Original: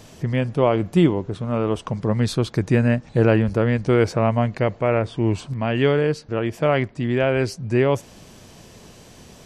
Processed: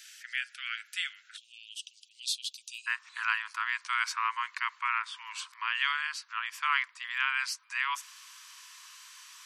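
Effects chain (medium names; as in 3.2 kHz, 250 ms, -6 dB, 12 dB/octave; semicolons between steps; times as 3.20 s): steep high-pass 1.4 kHz 96 dB/octave, from 1.36 s 2.7 kHz, from 2.86 s 990 Hz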